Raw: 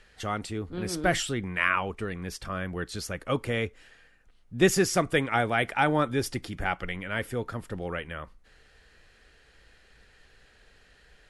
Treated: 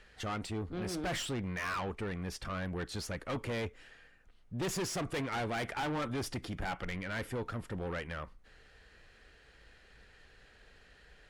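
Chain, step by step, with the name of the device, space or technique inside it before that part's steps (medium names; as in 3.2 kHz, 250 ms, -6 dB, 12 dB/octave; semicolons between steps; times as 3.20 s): tube preamp driven hard (valve stage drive 32 dB, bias 0.3; treble shelf 6.1 kHz -6.5 dB)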